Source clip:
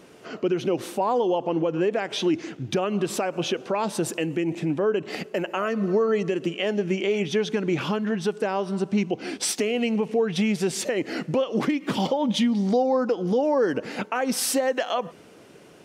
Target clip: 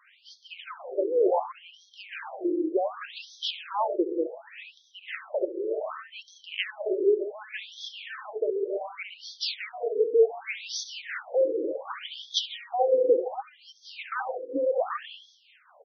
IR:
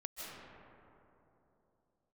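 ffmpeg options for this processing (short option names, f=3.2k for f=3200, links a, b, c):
-filter_complex "[0:a]asplit=2[a][b];[b]adelay=68,lowpass=f=4.5k:p=1,volume=-10dB,asplit=2[c][d];[d]adelay=68,lowpass=f=4.5k:p=1,volume=0.53,asplit=2[e][f];[f]adelay=68,lowpass=f=4.5k:p=1,volume=0.53,asplit=2[g][h];[h]adelay=68,lowpass=f=4.5k:p=1,volume=0.53,asplit=2[i][j];[j]adelay=68,lowpass=f=4.5k:p=1,volume=0.53,asplit=2[k][l];[l]adelay=68,lowpass=f=4.5k:p=1,volume=0.53[m];[a][c][e][g][i][k][m]amix=inputs=7:normalize=0,acrossover=split=720[n][o];[n]aeval=exprs='val(0)*(1-0.5/2+0.5/2*cos(2*PI*4.8*n/s))':c=same[p];[o]aeval=exprs='val(0)*(1-0.5/2-0.5/2*cos(2*PI*4.8*n/s))':c=same[q];[p][q]amix=inputs=2:normalize=0,asplit=2[r][s];[1:a]atrim=start_sample=2205,afade=t=out:st=0.43:d=0.01,atrim=end_sample=19404[t];[s][t]afir=irnorm=-1:irlink=0,volume=-0.5dB[u];[r][u]amix=inputs=2:normalize=0,afftfilt=real='re*between(b*sr/1024,370*pow(4600/370,0.5+0.5*sin(2*PI*0.67*pts/sr))/1.41,370*pow(4600/370,0.5+0.5*sin(2*PI*0.67*pts/sr))*1.41)':imag='im*between(b*sr/1024,370*pow(4600/370,0.5+0.5*sin(2*PI*0.67*pts/sr))/1.41,370*pow(4600/370,0.5+0.5*sin(2*PI*0.67*pts/sr))*1.41)':win_size=1024:overlap=0.75"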